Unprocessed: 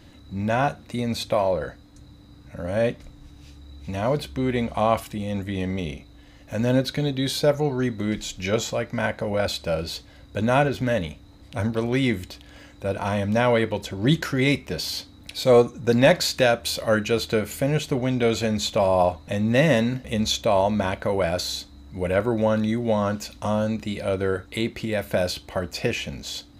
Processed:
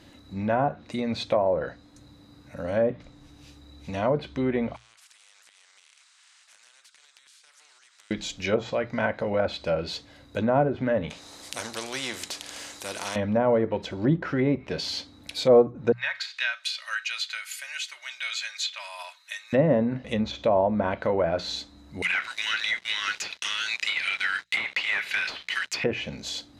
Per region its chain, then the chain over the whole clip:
0:04.76–0:08.11: Chebyshev band-pass filter 1,400–8,400 Hz, order 4 + downward compressor 16 to 1, threshold −47 dBFS + every bin compressed towards the loudest bin 4 to 1
0:11.10–0:13.16: low-pass filter 11,000 Hz + bass and treble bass −10 dB, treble +13 dB + every bin compressed towards the loudest bin 2 to 1
0:15.92–0:19.53: high-pass filter 1,500 Hz 24 dB per octave + comb filter 3.2 ms, depth 46%
0:22.02–0:25.84: Butterworth high-pass 1,800 Hz + leveller curve on the samples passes 5
whole clip: treble cut that deepens with the level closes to 870 Hz, closed at −17 dBFS; low-shelf EQ 100 Hz −11 dB; mains-hum notches 60/120/180 Hz

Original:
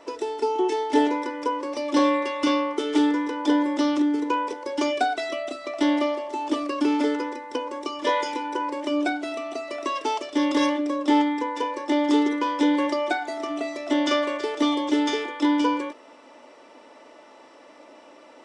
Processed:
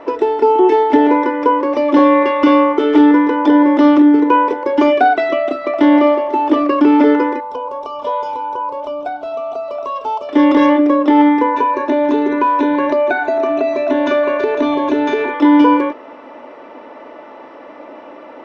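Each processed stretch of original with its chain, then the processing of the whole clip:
0:07.40–0:10.29: downward compressor 2 to 1, threshold −33 dBFS + phaser with its sweep stopped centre 780 Hz, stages 4
0:11.54–0:15.34: EQ curve with evenly spaced ripples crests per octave 1.5, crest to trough 12 dB + downward compressor 3 to 1, threshold −26 dBFS
whole clip: low-pass filter 1,900 Hz 12 dB per octave; boost into a limiter +15 dB; level −1 dB

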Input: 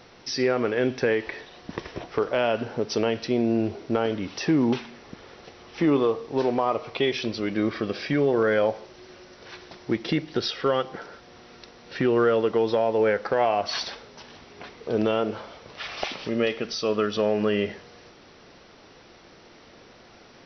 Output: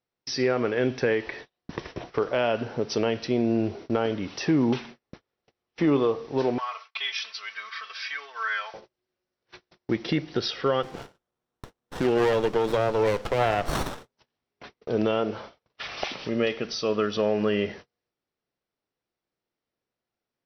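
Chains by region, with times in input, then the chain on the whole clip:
0:06.58–0:08.74: Chebyshev high-pass filter 1,200 Hz, order 3 + comb filter 4.5 ms, depth 91%
0:10.83–0:14.12: high-shelf EQ 2,500 Hz +10.5 dB + windowed peak hold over 17 samples
whole clip: noise gate −40 dBFS, range −37 dB; parametric band 130 Hz +3 dB 0.43 octaves; level −1 dB

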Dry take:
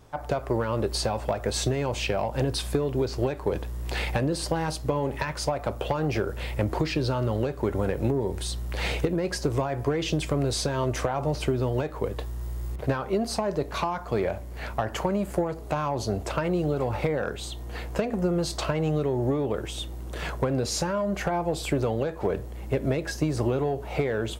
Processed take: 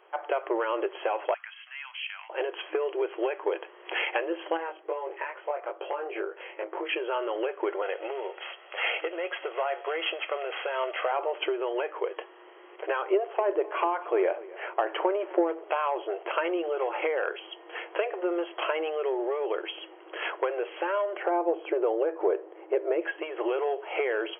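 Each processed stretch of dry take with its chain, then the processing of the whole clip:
0:01.34–0:02.30: Bessel high-pass filter 2,000 Hz, order 8 + downward compressor 5 to 1, threshold −34 dBFS
0:04.57–0:06.89: high-frequency loss of the air 420 metres + chorus effect 2.3 Hz, delay 20 ms, depth 2.1 ms
0:07.82–0:11.12: variable-slope delta modulation 32 kbit/s + high-pass filter 460 Hz + comb filter 1.5 ms, depth 33%
0:13.11–0:15.64: RIAA equalisation playback + single-tap delay 256 ms −20 dB
0:21.17–0:23.02: low-pass filter 1,400 Hz 6 dB per octave + spectral tilt −3 dB per octave
whole clip: brick-wall band-pass 320–3,300 Hz; spectral tilt +2 dB per octave; level +1.5 dB

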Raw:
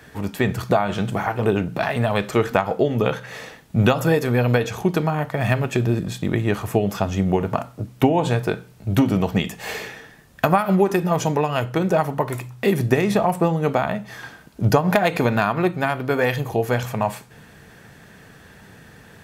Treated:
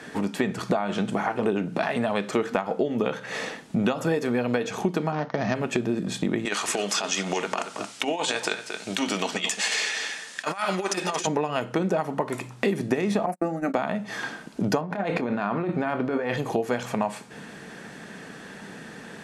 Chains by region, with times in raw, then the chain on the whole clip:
0:05.12–0:05.55: running median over 15 samples + Butterworth low-pass 6,400 Hz 96 dB per octave + downward expander −33 dBFS
0:06.45–0:11.27: meter weighting curve ITU-R 468 + compressor whose output falls as the input rises −25 dBFS, ratio −0.5 + single-tap delay 227 ms −12.5 dB
0:13.26–0:13.74: noise gate −24 dBFS, range −45 dB + phaser with its sweep stopped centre 660 Hz, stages 8
0:14.81–0:16.37: low-pass filter 1,900 Hz 6 dB per octave + compressor whose output falls as the input rises −25 dBFS + double-tracking delay 25 ms −13.5 dB
whole clip: low-pass filter 10,000 Hz 24 dB per octave; low shelf with overshoot 140 Hz −13.5 dB, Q 1.5; downward compressor 3 to 1, threshold −30 dBFS; level +5 dB

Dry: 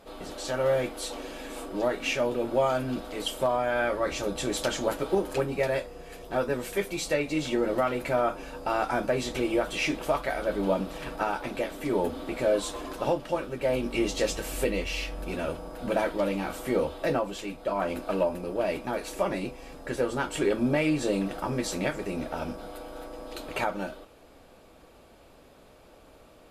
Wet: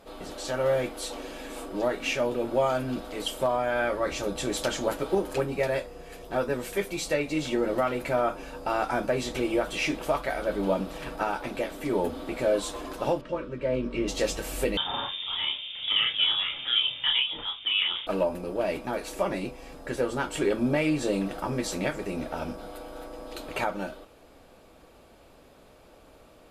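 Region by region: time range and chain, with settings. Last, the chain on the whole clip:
0:13.21–0:14.08: Butterworth band-reject 770 Hz, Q 3.3 + head-to-tape spacing loss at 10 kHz 21 dB + double-tracking delay 16 ms −12 dB
0:14.77–0:18.07: double-tracking delay 30 ms −3.5 dB + voice inversion scrambler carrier 3,600 Hz
whole clip: no processing

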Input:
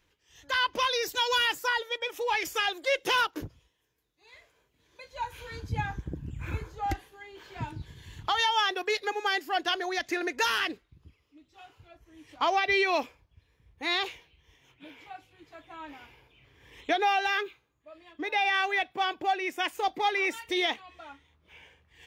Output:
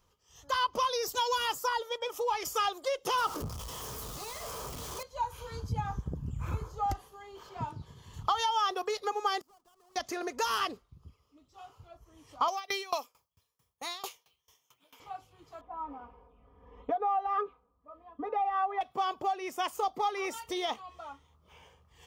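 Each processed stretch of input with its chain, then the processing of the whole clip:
0:03.18–0:05.03: converter with a step at zero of −35 dBFS + saturating transformer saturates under 580 Hz
0:07.49–0:08.14: high-pass filter 170 Hz 6 dB per octave + high-shelf EQ 5,100 Hz −7.5 dB
0:09.41–0:09.96: each half-wave held at its own peak + downward compressor 8 to 1, threshold −32 dBFS + gate with flip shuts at −41 dBFS, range −30 dB
0:12.48–0:15.00: high-pass filter 50 Hz + RIAA equalisation recording + tremolo with a ramp in dB decaying 4.5 Hz, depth 24 dB
0:15.61–0:18.81: low-pass filter 1,100 Hz + comb filter 4.1 ms, depth 93%
whole clip: flat-topped bell 2,300 Hz −12.5 dB; downward compressor, threshold −30 dBFS; thirty-one-band graphic EQ 315 Hz −10 dB, 1,250 Hz +11 dB, 3,150 Hz +8 dB; level +2 dB

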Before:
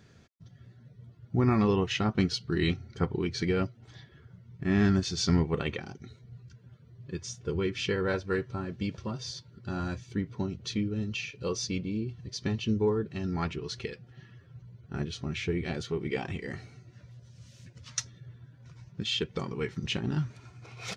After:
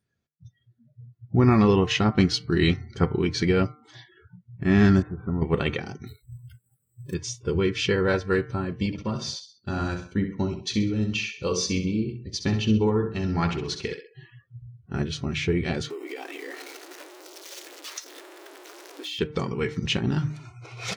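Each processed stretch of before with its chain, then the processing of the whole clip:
0:05.02–0:05.42: inverse Chebyshev low-pass filter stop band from 4,500 Hz, stop band 60 dB + downward compressor 2 to 1, threshold −36 dBFS
0:06.07–0:07.14: upward compression, threshold −59 dBFS + sample-rate reduction 8,000 Hz
0:08.86–0:14.15: downward expander −40 dBFS + mains-hum notches 60/120/180/240/300/360/420/480 Hz + repeating echo 65 ms, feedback 40%, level −9 dB
0:15.90–0:19.19: converter with a step at zero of −40 dBFS + linear-phase brick-wall high-pass 260 Hz + downward compressor 4 to 1, threshold −40 dBFS
whole clip: hum removal 151 Hz, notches 15; noise reduction from a noise print of the clip's start 29 dB; level +6.5 dB

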